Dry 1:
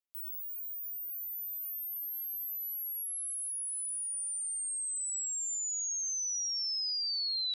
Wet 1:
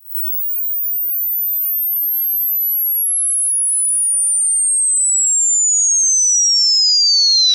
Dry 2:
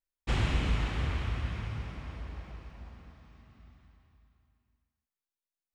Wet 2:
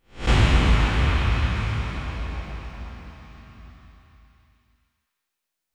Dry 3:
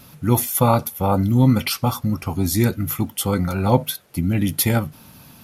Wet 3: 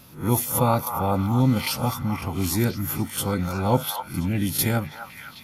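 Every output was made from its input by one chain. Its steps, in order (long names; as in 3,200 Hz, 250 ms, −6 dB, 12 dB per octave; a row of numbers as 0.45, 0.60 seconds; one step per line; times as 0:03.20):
peak hold with a rise ahead of every peak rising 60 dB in 0.32 s
echo through a band-pass that steps 257 ms, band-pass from 1,100 Hz, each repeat 0.7 octaves, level −4.5 dB
normalise the peak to −6 dBFS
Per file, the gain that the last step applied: +20.5, +10.0, −5.0 decibels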